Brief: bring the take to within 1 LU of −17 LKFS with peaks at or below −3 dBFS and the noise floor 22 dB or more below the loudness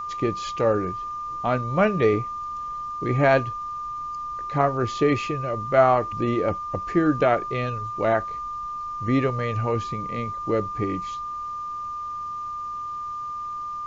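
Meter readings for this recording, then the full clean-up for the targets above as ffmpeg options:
interfering tone 1,200 Hz; level of the tone −29 dBFS; integrated loudness −25.0 LKFS; sample peak −6.0 dBFS; target loudness −17.0 LKFS
→ -af "bandreject=frequency=1200:width=30"
-af "volume=8dB,alimiter=limit=-3dB:level=0:latency=1"

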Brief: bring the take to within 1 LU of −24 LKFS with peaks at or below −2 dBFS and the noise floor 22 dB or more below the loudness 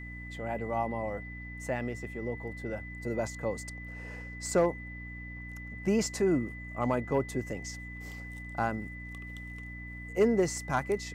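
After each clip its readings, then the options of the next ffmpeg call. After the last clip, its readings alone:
mains hum 60 Hz; hum harmonics up to 300 Hz; level of the hum −41 dBFS; interfering tone 2,000 Hz; level of the tone −44 dBFS; integrated loudness −33.5 LKFS; sample peak −16.5 dBFS; target loudness −24.0 LKFS
→ -af "bandreject=frequency=60:width_type=h:width=4,bandreject=frequency=120:width_type=h:width=4,bandreject=frequency=180:width_type=h:width=4,bandreject=frequency=240:width_type=h:width=4,bandreject=frequency=300:width_type=h:width=4"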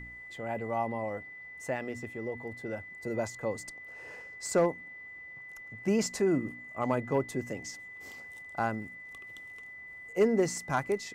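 mains hum none found; interfering tone 2,000 Hz; level of the tone −44 dBFS
→ -af "bandreject=frequency=2000:width=30"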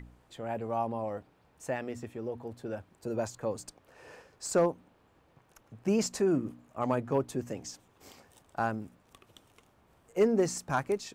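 interfering tone none found; integrated loudness −33.0 LKFS; sample peak −16.5 dBFS; target loudness −24.0 LKFS
→ -af "volume=9dB"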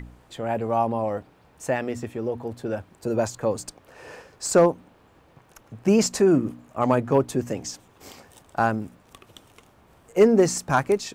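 integrated loudness −24.0 LKFS; sample peak −7.5 dBFS; background noise floor −57 dBFS

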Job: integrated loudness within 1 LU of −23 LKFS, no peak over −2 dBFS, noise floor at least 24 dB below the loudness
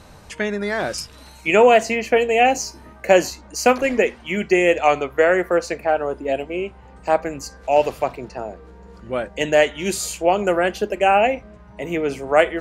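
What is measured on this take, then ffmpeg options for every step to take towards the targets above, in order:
integrated loudness −19.5 LKFS; sample peak −1.0 dBFS; target loudness −23.0 LKFS
→ -af "volume=-3.5dB"

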